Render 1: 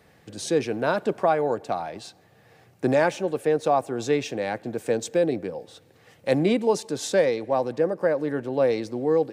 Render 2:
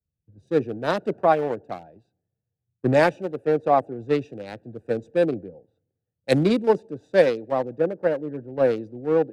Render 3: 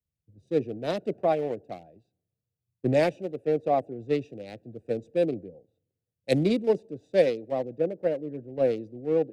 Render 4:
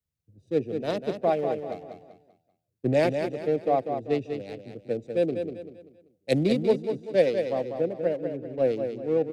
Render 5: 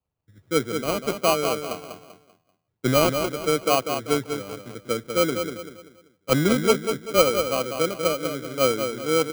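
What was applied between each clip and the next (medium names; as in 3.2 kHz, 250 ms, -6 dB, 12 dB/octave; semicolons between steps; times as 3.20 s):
local Wiener filter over 41 samples; three bands expanded up and down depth 100%; trim +1.5 dB
high-order bell 1.2 kHz -10 dB 1.2 oct; trim -4 dB
feedback delay 194 ms, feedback 36%, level -7 dB
sample-rate reducer 1.8 kHz, jitter 0%; trim +3 dB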